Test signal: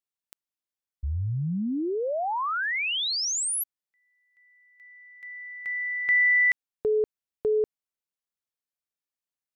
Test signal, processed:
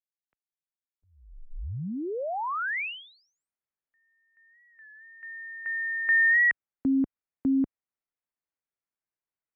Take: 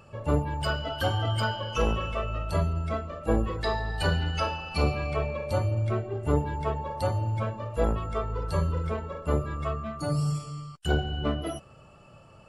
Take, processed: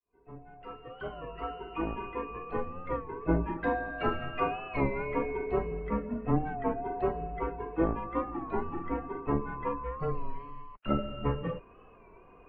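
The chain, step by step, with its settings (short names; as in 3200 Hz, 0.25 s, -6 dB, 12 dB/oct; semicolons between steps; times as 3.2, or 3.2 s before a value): opening faded in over 3.32 s; mistuned SSB -160 Hz 160–2500 Hz; record warp 33 1/3 rpm, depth 100 cents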